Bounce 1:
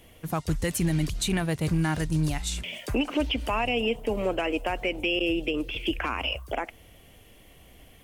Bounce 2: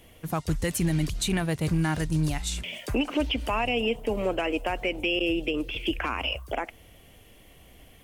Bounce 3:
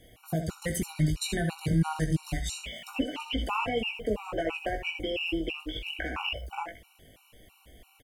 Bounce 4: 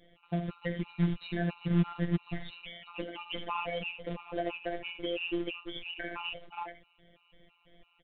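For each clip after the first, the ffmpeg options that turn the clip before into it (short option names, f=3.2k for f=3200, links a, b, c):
-af anull
-filter_complex "[0:a]asplit=2[a][b];[b]adelay=19,volume=-5dB[c];[a][c]amix=inputs=2:normalize=0,aecho=1:1:66|79:0.251|0.282,afftfilt=real='re*gt(sin(2*PI*3*pts/sr)*(1-2*mod(floor(b*sr/1024/750),2)),0)':imag='im*gt(sin(2*PI*3*pts/sr)*(1-2*mod(floor(b*sr/1024/750),2)),0)':win_size=1024:overlap=0.75,volume=-2dB"
-af "acrusher=bits=3:mode=log:mix=0:aa=0.000001,afftfilt=real='hypot(re,im)*cos(PI*b)':imag='0':win_size=1024:overlap=0.75,aresample=8000,aresample=44100,volume=-1.5dB"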